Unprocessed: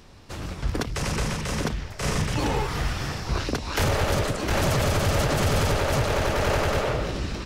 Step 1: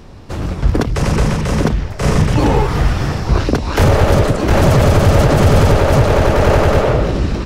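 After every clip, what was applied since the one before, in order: tilt shelf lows +5 dB, about 1.3 kHz; trim +8.5 dB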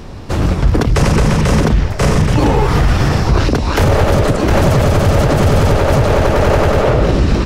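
gain riding 0.5 s; peak limiter -6.5 dBFS, peak gain reduction 7 dB; trim +3 dB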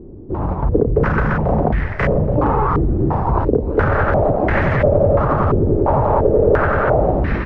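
level rider; step-sequenced low-pass 2.9 Hz 360–1900 Hz; trim -9 dB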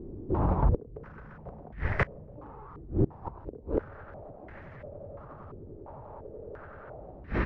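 inverted gate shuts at -9 dBFS, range -25 dB; trim -5.5 dB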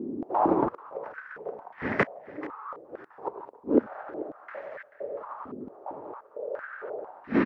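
delay 436 ms -18 dB; step-sequenced high-pass 4.4 Hz 250–1600 Hz; trim +3 dB

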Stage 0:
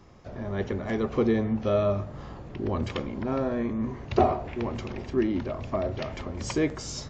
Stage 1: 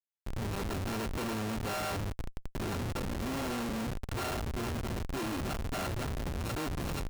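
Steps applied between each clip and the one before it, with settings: sorted samples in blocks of 32 samples; hum notches 50/100/150/200 Hz; Schmitt trigger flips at -33 dBFS; trim -5.5 dB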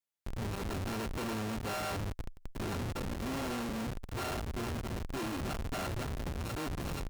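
valve stage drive 41 dB, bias 0.7; trim +6 dB

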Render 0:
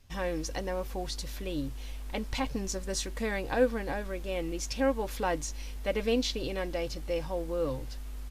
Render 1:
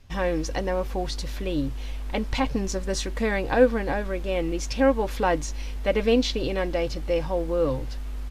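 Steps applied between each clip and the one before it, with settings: treble shelf 5.8 kHz -10.5 dB; trim +7.5 dB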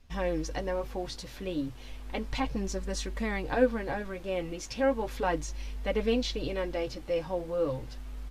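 flange 0.34 Hz, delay 4 ms, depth 7 ms, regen -35%; trim -2.5 dB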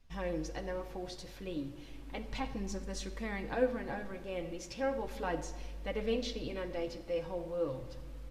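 simulated room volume 1400 m³, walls mixed, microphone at 0.68 m; trim -7 dB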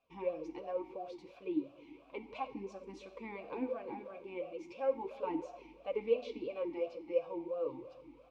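talking filter a-u 2.9 Hz; trim +8.5 dB

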